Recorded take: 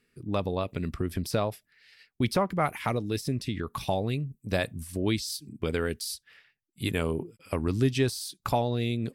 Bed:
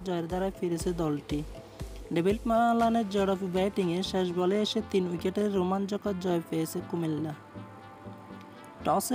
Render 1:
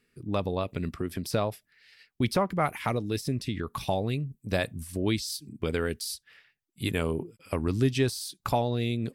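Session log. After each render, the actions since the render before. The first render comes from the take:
0:00.89–0:01.29: high-pass filter 150 Hz 6 dB per octave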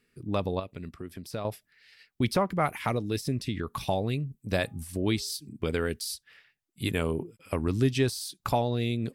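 0:00.60–0:01.45: clip gain −8 dB
0:04.45–0:05.35: hum removal 408 Hz, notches 3
0:06.94–0:07.79: notch filter 4,700 Hz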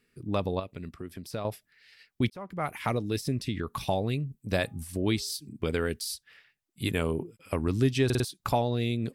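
0:02.30–0:02.90: fade in
0:08.05: stutter in place 0.05 s, 4 plays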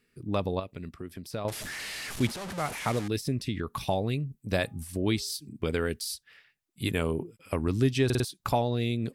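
0:01.48–0:03.08: linear delta modulator 64 kbit/s, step −31.5 dBFS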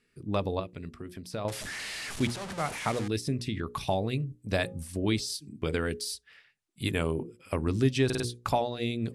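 low-pass filter 11,000 Hz 24 dB per octave
mains-hum notches 60/120/180/240/300/360/420/480/540 Hz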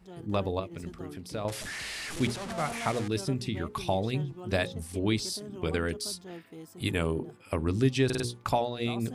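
mix in bed −15.5 dB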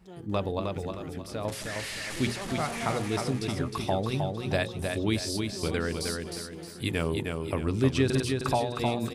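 repeating echo 311 ms, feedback 37%, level −4.5 dB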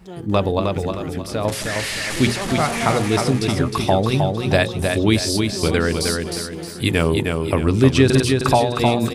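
level +11 dB
brickwall limiter −2 dBFS, peak gain reduction 1 dB

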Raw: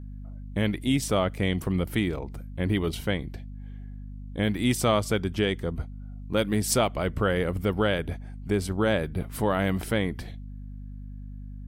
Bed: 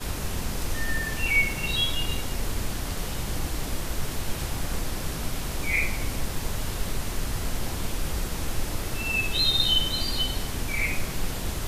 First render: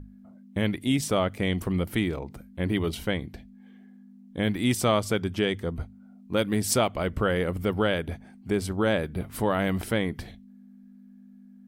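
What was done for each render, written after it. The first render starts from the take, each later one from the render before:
mains-hum notches 50/100/150 Hz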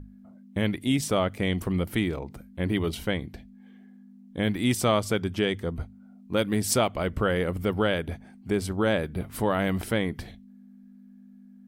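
no processing that can be heard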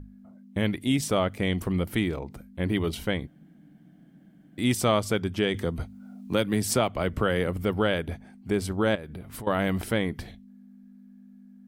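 0:03.27–0:04.58: fill with room tone
0:05.54–0:07.47: multiband upward and downward compressor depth 40%
0:08.95–0:09.47: downward compressor 8 to 1, threshold −35 dBFS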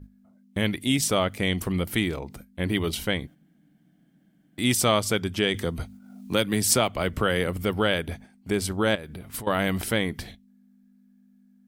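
noise gate −44 dBFS, range −8 dB
high-shelf EQ 2,100 Hz +8 dB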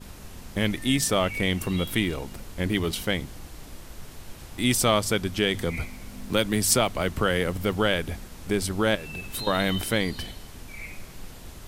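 mix in bed −12.5 dB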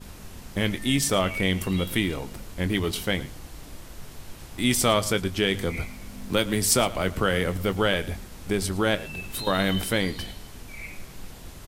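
double-tracking delay 21 ms −12.5 dB
slap from a distant wall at 19 metres, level −18 dB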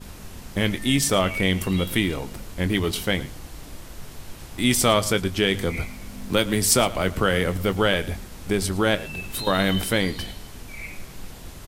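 level +2.5 dB

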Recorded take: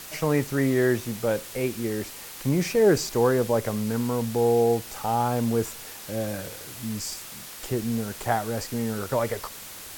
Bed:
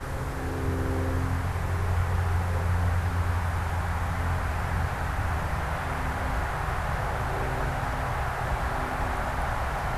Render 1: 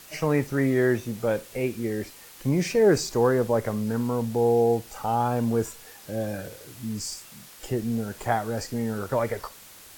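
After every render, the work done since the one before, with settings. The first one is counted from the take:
noise reduction from a noise print 7 dB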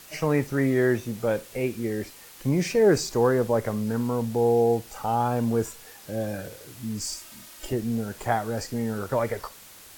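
0:07.01–0:07.73: comb filter 3.2 ms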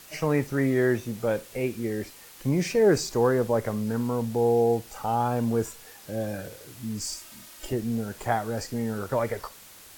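level −1 dB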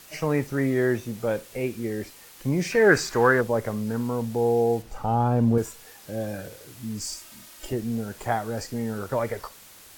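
0:02.72–0:03.41: parametric band 1,600 Hz +14.5 dB 1.2 octaves
0:04.82–0:05.58: spectral tilt −2.5 dB per octave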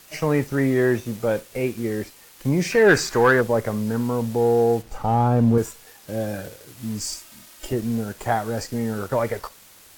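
leveller curve on the samples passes 1

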